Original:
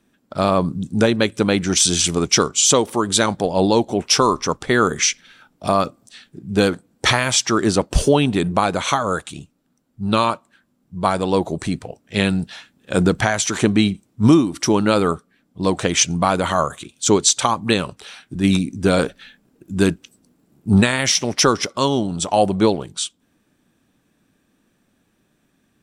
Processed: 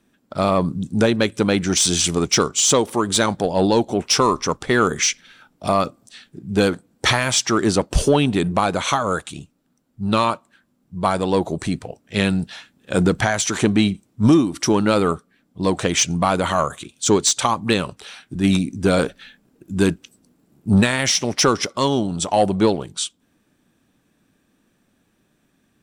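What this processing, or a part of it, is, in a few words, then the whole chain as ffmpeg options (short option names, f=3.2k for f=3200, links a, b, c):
saturation between pre-emphasis and de-emphasis: -af "highshelf=f=6.8k:g=11,asoftclip=type=tanh:threshold=-4dB,highshelf=f=6.8k:g=-11"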